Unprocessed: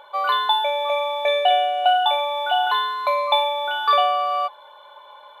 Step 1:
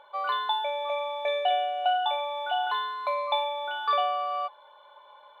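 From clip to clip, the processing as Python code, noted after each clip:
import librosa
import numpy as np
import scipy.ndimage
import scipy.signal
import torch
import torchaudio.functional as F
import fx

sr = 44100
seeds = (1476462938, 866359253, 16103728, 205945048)

y = fx.high_shelf(x, sr, hz=5900.0, db=-9.5)
y = y * librosa.db_to_amplitude(-7.5)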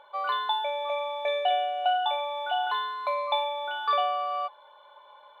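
y = x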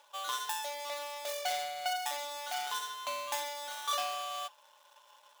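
y = scipy.ndimage.median_filter(x, 25, mode='constant')
y = fx.tilt_eq(y, sr, slope=5.0)
y = y * librosa.db_to_amplitude(-6.5)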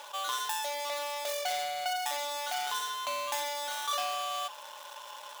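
y = fx.env_flatten(x, sr, amount_pct=50)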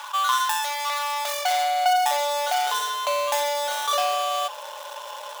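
y = fx.filter_sweep_highpass(x, sr, from_hz=1100.0, to_hz=490.0, start_s=0.96, end_s=2.77, q=2.3)
y = y * librosa.db_to_amplitude(7.0)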